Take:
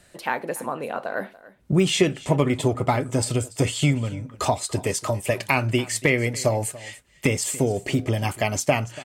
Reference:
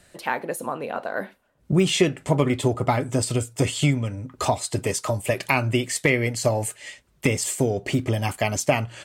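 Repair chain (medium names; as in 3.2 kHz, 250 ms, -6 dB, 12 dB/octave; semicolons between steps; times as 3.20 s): inverse comb 286 ms -19.5 dB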